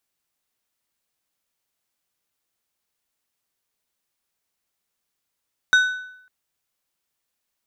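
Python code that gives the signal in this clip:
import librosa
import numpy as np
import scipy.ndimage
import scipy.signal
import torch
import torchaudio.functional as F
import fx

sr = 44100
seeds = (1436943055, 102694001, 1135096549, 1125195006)

y = fx.strike_metal(sr, length_s=0.55, level_db=-10.0, body='plate', hz=1500.0, decay_s=0.74, tilt_db=9.5, modes=5)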